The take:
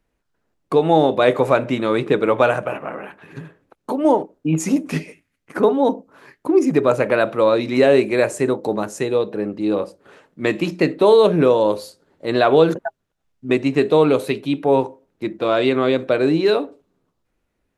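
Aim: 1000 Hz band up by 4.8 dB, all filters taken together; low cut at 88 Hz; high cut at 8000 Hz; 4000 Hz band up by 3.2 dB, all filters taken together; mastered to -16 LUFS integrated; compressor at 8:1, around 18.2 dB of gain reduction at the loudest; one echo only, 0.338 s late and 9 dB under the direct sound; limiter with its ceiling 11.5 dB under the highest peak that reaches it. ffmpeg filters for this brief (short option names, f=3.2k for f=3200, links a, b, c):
-af "highpass=88,lowpass=8k,equalizer=f=1k:t=o:g=6,equalizer=f=4k:t=o:g=3.5,acompressor=threshold=-27dB:ratio=8,alimiter=limit=-23dB:level=0:latency=1,aecho=1:1:338:0.355,volume=18dB"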